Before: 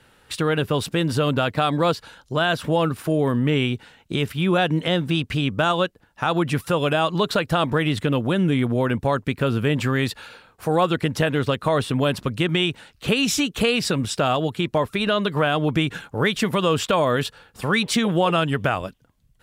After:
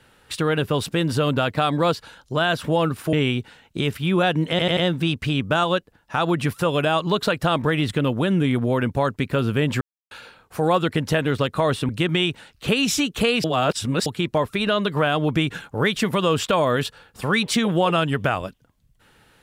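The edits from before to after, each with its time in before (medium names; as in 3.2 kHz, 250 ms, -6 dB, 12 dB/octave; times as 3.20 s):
3.13–3.48 s: delete
4.85 s: stutter 0.09 s, 4 plays
9.89–10.19 s: mute
11.97–12.29 s: delete
13.84–14.46 s: reverse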